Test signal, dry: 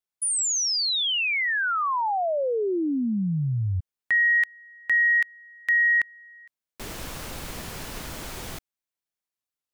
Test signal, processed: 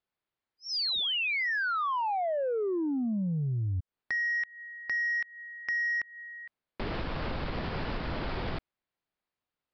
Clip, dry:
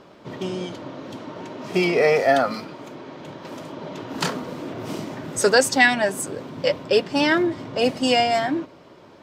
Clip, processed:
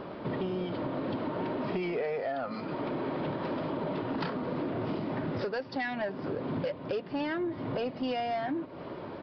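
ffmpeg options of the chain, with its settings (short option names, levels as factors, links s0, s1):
-af "lowpass=f=1700:p=1,acompressor=threshold=0.02:ratio=16:attack=4.5:release=432:knee=1:detection=peak,aresample=11025,asoftclip=type=tanh:threshold=0.0237,aresample=44100,volume=2.51"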